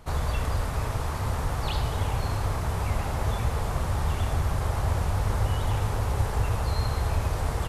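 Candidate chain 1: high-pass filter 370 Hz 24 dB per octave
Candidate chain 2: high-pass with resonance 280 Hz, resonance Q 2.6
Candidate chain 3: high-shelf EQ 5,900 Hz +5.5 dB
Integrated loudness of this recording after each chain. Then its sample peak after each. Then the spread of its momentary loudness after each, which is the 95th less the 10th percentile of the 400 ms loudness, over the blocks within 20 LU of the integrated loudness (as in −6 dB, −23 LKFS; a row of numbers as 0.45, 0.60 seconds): −35.0, −32.5, −28.0 LKFS; −20.5, −19.0, −12.5 dBFS; 1, 1, 2 LU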